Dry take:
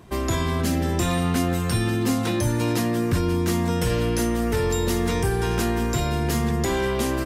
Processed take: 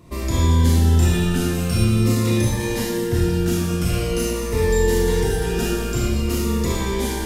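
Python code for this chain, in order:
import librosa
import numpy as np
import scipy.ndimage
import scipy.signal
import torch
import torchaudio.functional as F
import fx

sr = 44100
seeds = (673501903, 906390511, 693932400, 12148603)

p1 = fx.low_shelf(x, sr, hz=90.0, db=6.0)
p2 = np.clip(10.0 ** (18.5 / 20.0) * p1, -1.0, 1.0) / 10.0 ** (18.5 / 20.0)
p3 = p1 + (p2 * librosa.db_to_amplitude(-3.0))
p4 = fx.rev_schroeder(p3, sr, rt60_s=1.2, comb_ms=25, drr_db=-4.5)
p5 = fx.notch_cascade(p4, sr, direction='falling', hz=0.46)
y = p5 * librosa.db_to_amplitude(-6.5)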